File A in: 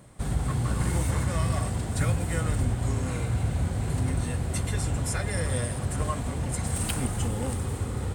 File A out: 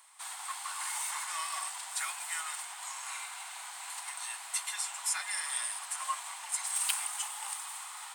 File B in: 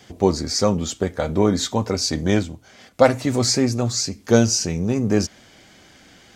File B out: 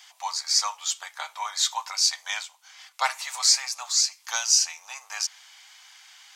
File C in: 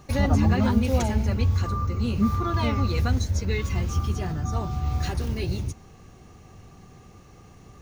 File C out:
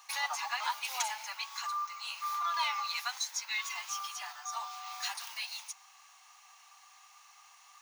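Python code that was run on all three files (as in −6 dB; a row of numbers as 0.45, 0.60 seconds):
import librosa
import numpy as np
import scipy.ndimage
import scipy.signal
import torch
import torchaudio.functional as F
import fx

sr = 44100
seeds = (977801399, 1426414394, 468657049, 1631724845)

y = scipy.signal.sosfilt(scipy.signal.butter(8, 880.0, 'highpass', fs=sr, output='sos'), x)
y = fx.peak_eq(y, sr, hz=1500.0, db=-6.0, octaves=0.92)
y = y * 10.0 ** (2.5 / 20.0)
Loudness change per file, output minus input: −6.5, −3.5, −10.5 LU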